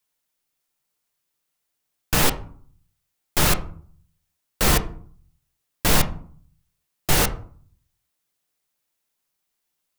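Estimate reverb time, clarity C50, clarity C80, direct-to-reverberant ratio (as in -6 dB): 0.50 s, 14.0 dB, 18.5 dB, 6.5 dB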